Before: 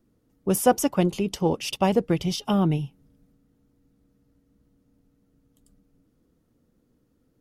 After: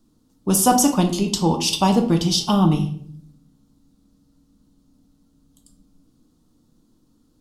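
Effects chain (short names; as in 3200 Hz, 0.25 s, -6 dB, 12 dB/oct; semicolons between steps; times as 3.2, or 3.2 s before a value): graphic EQ 125/250/500/1000/2000/4000/8000 Hz -3/+5/-8/+7/-10/+9/+7 dB; shoebox room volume 85 m³, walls mixed, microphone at 0.48 m; gain +3 dB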